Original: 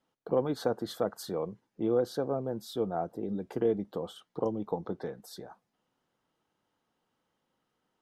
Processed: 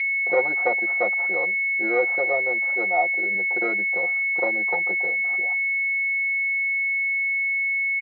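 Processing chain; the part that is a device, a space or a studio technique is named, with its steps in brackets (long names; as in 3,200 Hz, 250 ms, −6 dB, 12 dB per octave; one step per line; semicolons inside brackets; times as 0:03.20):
0:02.53–0:03.35: high-pass filter 200 Hz
toy sound module (linearly interpolated sample-rate reduction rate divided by 8×; switching amplifier with a slow clock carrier 2,200 Hz; loudspeaker in its box 580–4,100 Hz, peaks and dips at 760 Hz +4 dB, 1,100 Hz −5 dB, 2,000 Hz +10 dB, 3,200 Hz −4 dB)
comb filter 5.6 ms, depth 94%
dynamic equaliser 300 Hz, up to −3 dB, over −44 dBFS, Q 0.71
level +8.5 dB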